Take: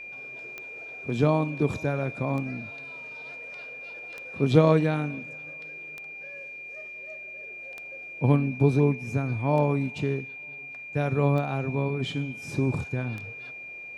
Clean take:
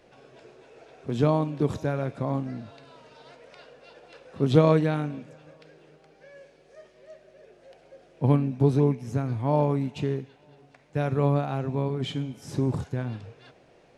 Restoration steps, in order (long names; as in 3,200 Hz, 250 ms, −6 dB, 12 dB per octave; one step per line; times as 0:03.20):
click removal
notch filter 2,400 Hz, Q 30